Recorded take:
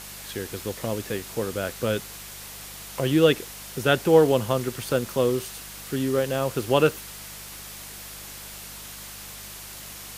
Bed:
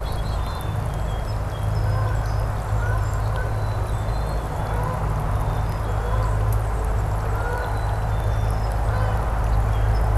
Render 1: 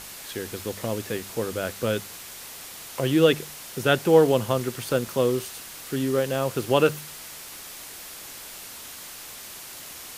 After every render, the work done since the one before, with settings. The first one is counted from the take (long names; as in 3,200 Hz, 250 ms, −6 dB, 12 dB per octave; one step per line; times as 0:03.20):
hum removal 50 Hz, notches 4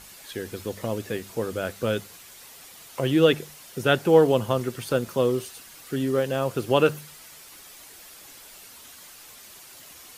broadband denoise 8 dB, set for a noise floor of −41 dBFS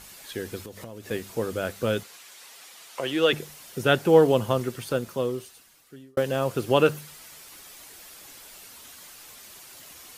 0:00.64–0:01.11: downward compressor 5 to 1, threshold −37 dBFS
0:02.03–0:03.33: meter weighting curve A
0:04.54–0:06.17: fade out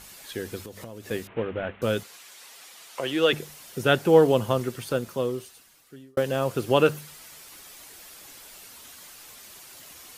0:01.27–0:01.82: variable-slope delta modulation 16 kbit/s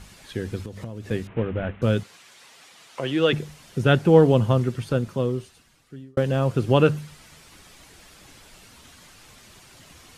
low-pass filter 9,300 Hz 12 dB per octave
bass and treble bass +11 dB, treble −4 dB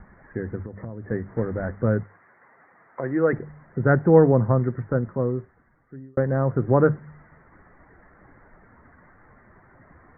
Butterworth low-pass 2,000 Hz 96 dB per octave
mains-hum notches 50/100/150 Hz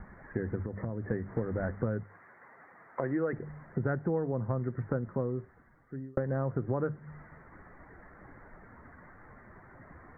downward compressor 8 to 1, threshold −28 dBFS, peak gain reduction 18.5 dB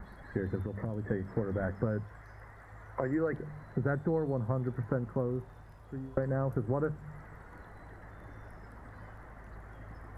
mix in bed −29.5 dB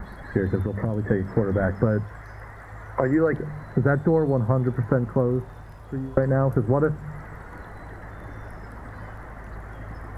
level +10.5 dB